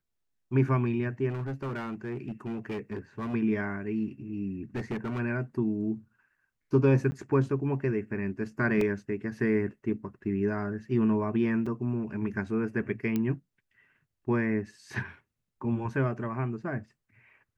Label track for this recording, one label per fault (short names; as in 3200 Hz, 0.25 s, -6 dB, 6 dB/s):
1.290000	3.350000	clipped -30 dBFS
4.750000	5.200000	clipped -28.5 dBFS
7.110000	7.120000	gap 10 ms
8.810000	8.810000	gap 3.2 ms
11.660000	11.660000	gap 4.6 ms
13.160000	13.160000	pop -17 dBFS